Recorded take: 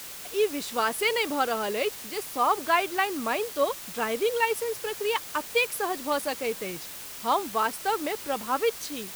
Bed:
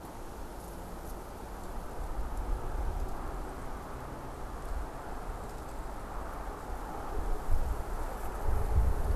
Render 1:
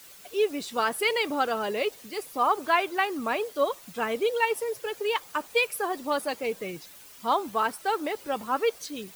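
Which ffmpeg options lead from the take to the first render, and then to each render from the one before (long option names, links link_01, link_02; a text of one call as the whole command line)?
ffmpeg -i in.wav -af "afftdn=noise_reduction=11:noise_floor=-41" out.wav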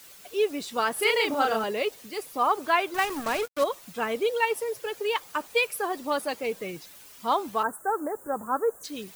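ffmpeg -i in.wav -filter_complex "[0:a]asettb=1/sr,asplit=3[link_01][link_02][link_03];[link_01]atrim=end=0.934[link_04];[link_02]atrim=start=0.93:end=1.64,asetpts=PTS-STARTPTS,afade=type=in:duration=0.004:curve=qsin,afade=type=out:start_time=0.706:duration=0.004:curve=qsin,asplit=2[link_05][link_06];[link_06]adelay=36,volume=-2dB[link_07];[link_05][link_07]amix=inputs=2:normalize=0,atrim=end_sample=31311[link_08];[link_03]atrim=start=1.636[link_09];[link_04][link_08]acrossfade=duration=0.004:curve1=hsin:curve2=qsin[link_10];[link_10][link_09]acrossfade=duration=0.004:curve1=qsin:curve2=hsin,asettb=1/sr,asplit=3[link_11][link_12][link_13];[link_11]atrim=end=2.944[link_14];[link_12]atrim=start=2.94:end=3.64,asetpts=PTS-STARTPTS,afade=type=in:duration=0.004:curve=qsin,afade=type=out:start_time=0.696:duration=0.004:curve=qsin,acrusher=bits=4:mix=0:aa=0.5[link_15];[link_13]atrim=start=3.636[link_16];[link_14][link_15]acrossfade=duration=0.004:curve1=hsin:curve2=qsin[link_17];[link_17][link_16]acrossfade=duration=0.004:curve1=qsin:curve2=hsin,asplit=3[link_18][link_19][link_20];[link_18]afade=type=out:start_time=7.62:duration=0.02[link_21];[link_19]asuperstop=centerf=3500:order=12:qfactor=0.66,afade=type=in:start_time=7.62:duration=0.02,afade=type=out:start_time=8.83:duration=0.02[link_22];[link_20]afade=type=in:start_time=8.83:duration=0.02[link_23];[link_21][link_22][link_23]amix=inputs=3:normalize=0" out.wav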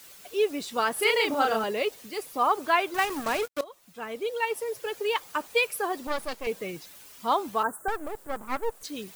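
ffmpeg -i in.wav -filter_complex "[0:a]asettb=1/sr,asplit=3[link_01][link_02][link_03];[link_01]atrim=end=6.074[link_04];[link_02]atrim=start=6.07:end=6.47,asetpts=PTS-STARTPTS,afade=type=in:duration=0.004:curve=qsin,afade=type=out:start_time=0.396:duration=0.004:curve=qsin,aeval=exprs='max(val(0),0)':channel_layout=same[link_05];[link_03]atrim=start=6.466[link_06];[link_04][link_05]acrossfade=duration=0.004:curve1=hsin:curve2=qsin[link_07];[link_07][link_06]acrossfade=duration=0.004:curve1=qsin:curve2=hsin,asettb=1/sr,asplit=3[link_08][link_09][link_10];[link_08]atrim=end=7.884[link_11];[link_09]atrim=start=7.88:end=8.83,asetpts=PTS-STARTPTS,afade=type=in:duration=0.004:curve=qsin,afade=type=out:start_time=0.946:duration=0.004:curve=qsin,aeval=exprs='max(val(0),0)':channel_layout=same[link_12];[link_10]atrim=start=8.826[link_13];[link_11][link_12]acrossfade=duration=0.004:curve1=hsin:curve2=qsin[link_14];[link_14][link_13]acrossfade=duration=0.004:curve1=qsin:curve2=hsin,asplit=2[link_15][link_16];[link_15]atrim=end=3.61,asetpts=PTS-STARTPTS,afade=type=out:start_time=3.606:duration=0.004:curve=hsin:silence=0.0944061[link_17];[link_16]atrim=start=3.61,asetpts=PTS-STARTPTS,afade=type=in:duration=1.28:silence=0.0944061[link_18];[link_17][link_18]concat=n=2:v=0:a=1" out.wav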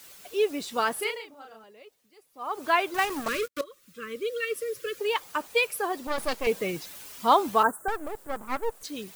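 ffmpeg -i in.wav -filter_complex "[0:a]asettb=1/sr,asplit=3[link_01][link_02][link_03];[link_01]atrim=end=3.284[link_04];[link_02]atrim=start=3.28:end=4.99,asetpts=PTS-STARTPTS,afade=type=in:duration=0.004:curve=qsin,afade=type=out:start_time=1.706:duration=0.004:curve=qsin,asuperstop=centerf=790:order=12:qfactor=1.6[link_05];[link_03]atrim=start=4.986[link_06];[link_04][link_05]acrossfade=duration=0.004:curve1=hsin:curve2=qsin[link_07];[link_07][link_06]acrossfade=duration=0.004:curve1=qsin:curve2=hsin,asplit=5[link_08][link_09][link_10][link_11][link_12];[link_08]atrim=end=1.33,asetpts=PTS-STARTPTS,afade=type=out:start_time=0.93:duration=0.4:curve=qua:silence=0.0707946[link_13];[link_09]atrim=start=1.33:end=2.27,asetpts=PTS-STARTPTS,volume=-23dB[link_14];[link_10]atrim=start=2.27:end=6.182,asetpts=PTS-STARTPTS,afade=type=in:duration=0.4:curve=qua:silence=0.0707946[link_15];[link_11]atrim=start=6.178:end=7.712,asetpts=PTS-STARTPTS,volume=5dB[link_16];[link_12]atrim=start=7.708[link_17];[link_13][link_14][link_15]concat=n=3:v=0:a=1[link_18];[link_18][link_16]acrossfade=duration=0.004:curve1=hsin:curve2=hsin[link_19];[link_19][link_17]acrossfade=duration=0.004:curve1=hsin:curve2=hsin" out.wav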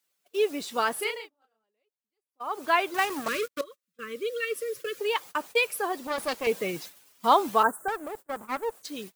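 ffmpeg -i in.wav -af "highpass=frequency=140:poles=1,agate=range=-28dB:threshold=-41dB:ratio=16:detection=peak" out.wav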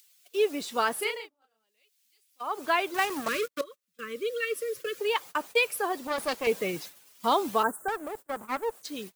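ffmpeg -i in.wav -filter_complex "[0:a]acrossover=split=540|2200[link_01][link_02][link_03];[link_02]alimiter=limit=-17.5dB:level=0:latency=1:release=311[link_04];[link_03]acompressor=mode=upward:threshold=-48dB:ratio=2.5[link_05];[link_01][link_04][link_05]amix=inputs=3:normalize=0" out.wav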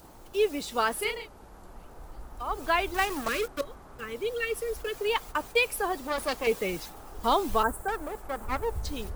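ffmpeg -i in.wav -i bed.wav -filter_complex "[1:a]volume=-7.5dB[link_01];[0:a][link_01]amix=inputs=2:normalize=0" out.wav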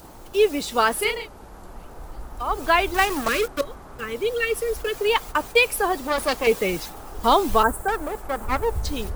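ffmpeg -i in.wav -af "volume=7dB" out.wav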